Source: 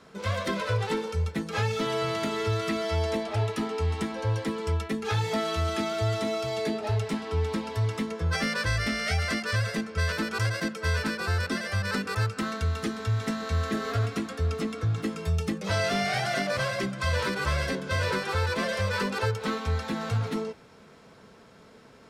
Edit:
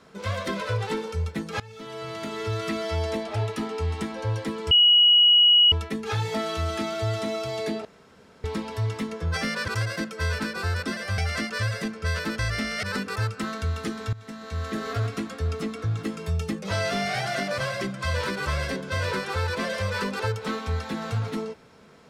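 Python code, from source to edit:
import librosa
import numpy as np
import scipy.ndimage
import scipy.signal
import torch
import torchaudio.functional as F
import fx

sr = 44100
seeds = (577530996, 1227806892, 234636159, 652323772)

y = fx.edit(x, sr, fx.fade_in_from(start_s=1.6, length_s=1.08, floor_db=-22.0),
    fx.insert_tone(at_s=4.71, length_s=1.01, hz=2910.0, db=-13.0),
    fx.room_tone_fill(start_s=6.84, length_s=0.59),
    fx.swap(start_s=8.67, length_s=0.44, other_s=10.32, other_length_s=1.5),
    fx.fade_in_from(start_s=13.12, length_s=0.73, floor_db=-18.5), tone=tone)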